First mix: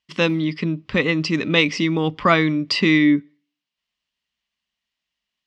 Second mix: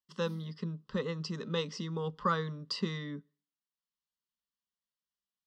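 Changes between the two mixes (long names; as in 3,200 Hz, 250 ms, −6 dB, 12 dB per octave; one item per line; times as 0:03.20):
speech −11.5 dB
master: add phaser with its sweep stopped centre 460 Hz, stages 8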